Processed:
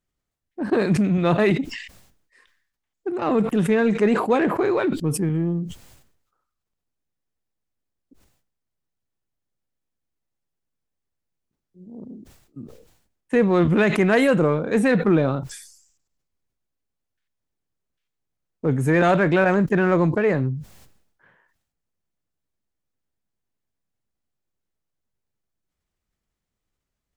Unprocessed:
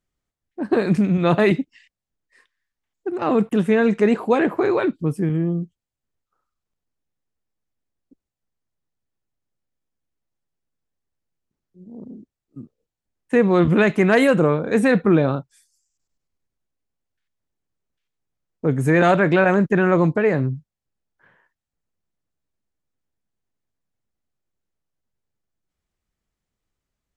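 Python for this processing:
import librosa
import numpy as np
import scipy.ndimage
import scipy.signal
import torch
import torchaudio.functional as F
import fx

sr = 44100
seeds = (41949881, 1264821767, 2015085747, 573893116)

p1 = np.clip(x, -10.0 ** (-20.5 / 20.0), 10.0 ** (-20.5 / 20.0))
p2 = x + (p1 * 10.0 ** (-12.0 / 20.0))
p3 = fx.sustainer(p2, sr, db_per_s=74.0)
y = p3 * 10.0 ** (-3.0 / 20.0)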